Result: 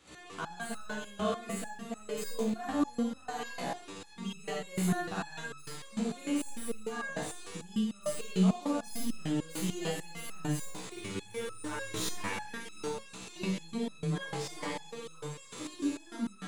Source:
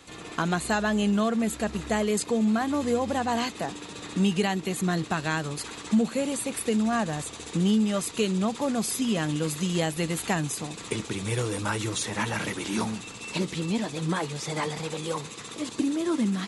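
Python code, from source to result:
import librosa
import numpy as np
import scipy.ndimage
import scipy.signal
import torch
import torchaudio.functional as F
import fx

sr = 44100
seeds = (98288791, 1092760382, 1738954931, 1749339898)

y = fx.tracing_dist(x, sr, depth_ms=0.031)
y = fx.rev_schroeder(y, sr, rt60_s=0.56, comb_ms=38, drr_db=-4.5)
y = fx.resonator_held(y, sr, hz=6.7, low_hz=63.0, high_hz=1300.0)
y = y * librosa.db_to_amplitude(-2.0)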